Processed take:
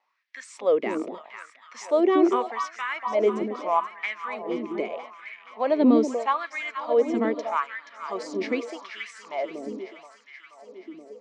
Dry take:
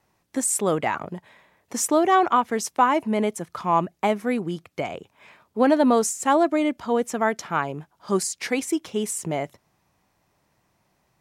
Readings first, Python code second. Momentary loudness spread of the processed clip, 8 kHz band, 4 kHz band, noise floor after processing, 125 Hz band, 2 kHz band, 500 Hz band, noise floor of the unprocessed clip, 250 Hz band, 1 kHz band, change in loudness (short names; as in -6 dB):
21 LU, under -15 dB, -5.5 dB, -55 dBFS, under -10 dB, -2.5 dB, -0.5 dB, -70 dBFS, -1.5 dB, -5.5 dB, -2.5 dB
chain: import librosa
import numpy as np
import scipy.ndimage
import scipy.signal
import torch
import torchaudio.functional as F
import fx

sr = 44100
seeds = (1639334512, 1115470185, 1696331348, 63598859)

y = fx.cabinet(x, sr, low_hz=110.0, low_slope=12, high_hz=5000.0, hz=(120.0, 220.0, 800.0, 1500.0, 2200.0), db=(-8, 8, -9, -7, 4))
y = fx.echo_alternate(y, sr, ms=239, hz=930.0, feedback_pct=80, wet_db=-7.5)
y = fx.filter_lfo_highpass(y, sr, shape='sine', hz=0.8, low_hz=300.0, high_hz=1800.0, q=4.4)
y = y * 10.0 ** (-6.5 / 20.0)